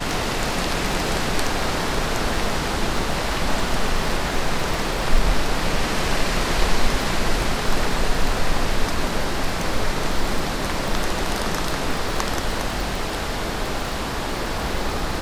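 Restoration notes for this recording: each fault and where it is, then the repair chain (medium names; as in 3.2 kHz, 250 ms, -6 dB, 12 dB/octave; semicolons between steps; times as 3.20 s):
crackle 25 per s -24 dBFS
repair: de-click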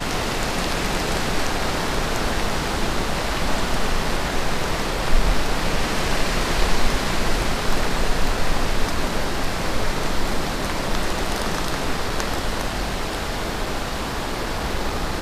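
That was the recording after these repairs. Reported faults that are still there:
nothing left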